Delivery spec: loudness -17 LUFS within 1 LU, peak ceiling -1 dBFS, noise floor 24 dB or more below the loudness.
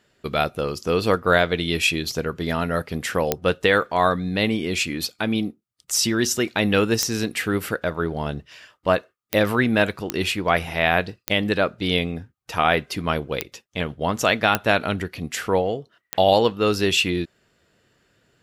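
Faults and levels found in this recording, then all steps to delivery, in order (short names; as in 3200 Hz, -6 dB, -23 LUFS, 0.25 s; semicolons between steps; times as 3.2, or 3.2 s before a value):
clicks 8; loudness -22.5 LUFS; peak -2.5 dBFS; loudness target -17.0 LUFS
-> de-click; gain +5.5 dB; limiter -1 dBFS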